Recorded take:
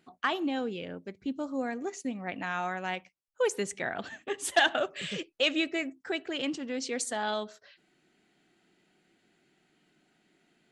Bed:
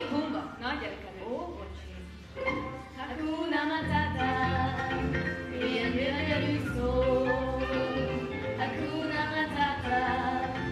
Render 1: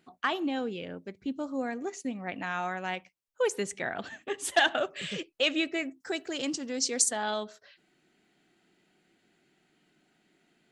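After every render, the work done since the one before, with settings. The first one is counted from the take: 6.00–7.09 s: resonant high shelf 4.1 kHz +8.5 dB, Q 1.5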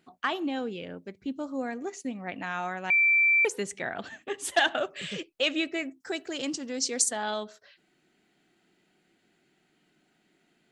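2.90–3.45 s: bleep 2.34 kHz -18.5 dBFS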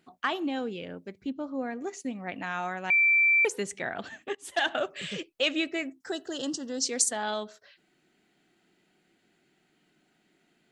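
1.30–1.81 s: distance through air 170 m; 4.35–4.79 s: fade in, from -17.5 dB; 6.11–6.84 s: Butterworth band-stop 2.3 kHz, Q 2.3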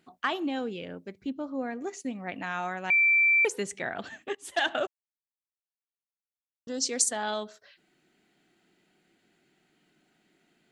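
4.87–6.67 s: mute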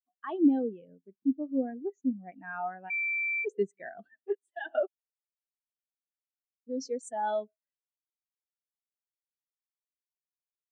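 compressor with a negative ratio -28 dBFS, ratio -1; spectral contrast expander 2.5:1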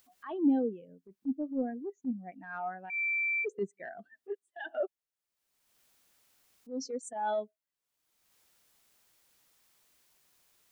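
transient shaper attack -8 dB, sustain +1 dB; upward compressor, threshold -46 dBFS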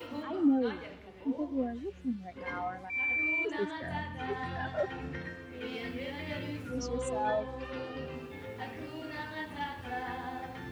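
add bed -9.5 dB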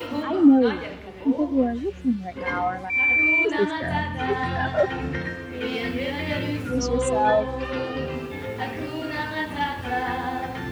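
trim +11.5 dB

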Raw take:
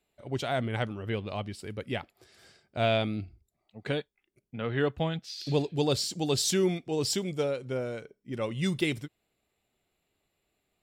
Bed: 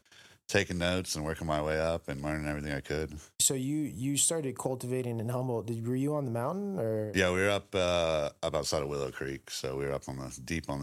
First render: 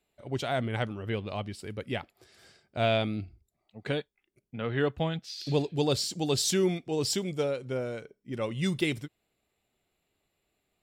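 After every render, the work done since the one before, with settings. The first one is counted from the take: no audible change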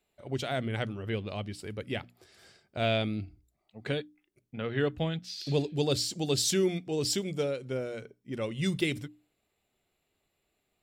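hum notches 60/120/180/240/300 Hz; dynamic bell 930 Hz, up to -6 dB, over -45 dBFS, Q 1.4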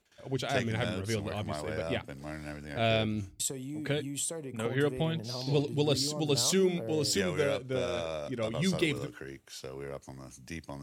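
add bed -7 dB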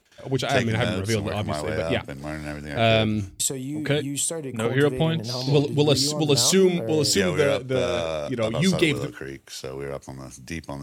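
trim +8.5 dB

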